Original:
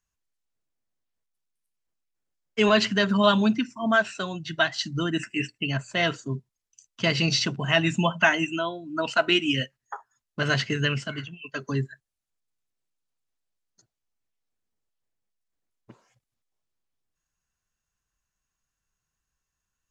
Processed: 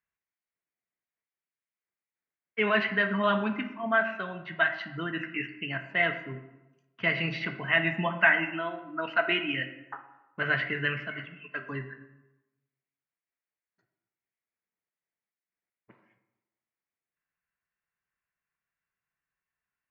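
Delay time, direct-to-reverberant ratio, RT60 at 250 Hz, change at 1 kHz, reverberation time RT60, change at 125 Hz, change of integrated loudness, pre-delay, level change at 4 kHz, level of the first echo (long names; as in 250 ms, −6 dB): no echo audible, 6.5 dB, 1.0 s, −3.5 dB, 1.0 s, −9.0 dB, −4.0 dB, 3 ms, −10.0 dB, no echo audible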